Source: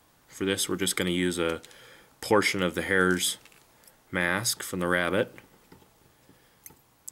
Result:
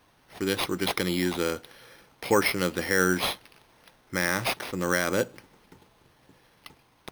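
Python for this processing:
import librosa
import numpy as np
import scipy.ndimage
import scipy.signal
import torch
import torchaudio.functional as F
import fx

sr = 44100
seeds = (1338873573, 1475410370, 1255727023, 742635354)

y = np.repeat(x[::6], 6)[:len(x)]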